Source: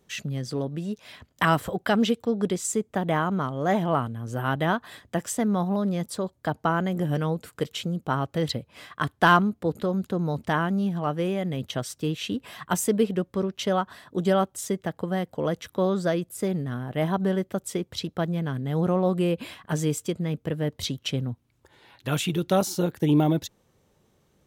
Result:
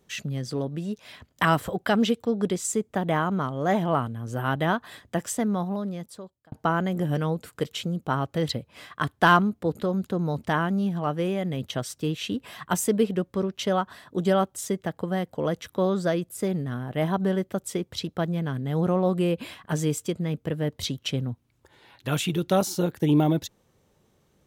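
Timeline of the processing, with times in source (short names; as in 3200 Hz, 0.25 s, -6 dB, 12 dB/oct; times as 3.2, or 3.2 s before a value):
5.31–6.52 fade out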